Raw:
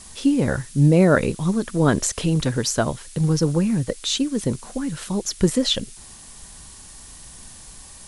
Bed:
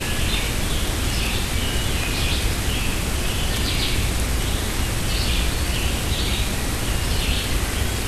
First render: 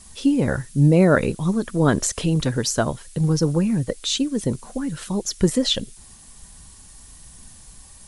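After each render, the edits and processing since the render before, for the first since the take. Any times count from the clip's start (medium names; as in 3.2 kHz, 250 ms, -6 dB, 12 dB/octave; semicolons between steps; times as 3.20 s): noise reduction 6 dB, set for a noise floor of -43 dBFS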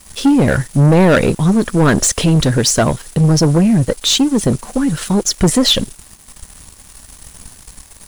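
waveshaping leveller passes 3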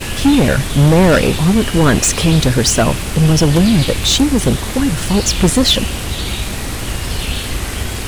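add bed +1.5 dB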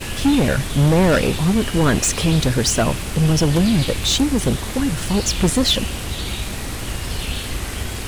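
trim -5 dB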